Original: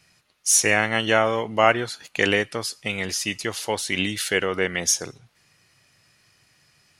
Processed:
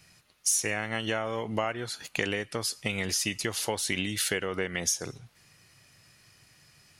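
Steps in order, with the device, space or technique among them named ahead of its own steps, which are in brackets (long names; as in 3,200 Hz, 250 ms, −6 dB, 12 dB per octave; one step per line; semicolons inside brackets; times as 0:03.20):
ASMR close-microphone chain (low-shelf EQ 190 Hz +5 dB; downward compressor 8 to 1, threshold −26 dBFS, peak gain reduction 15.5 dB; high-shelf EQ 9,100 Hz +6 dB)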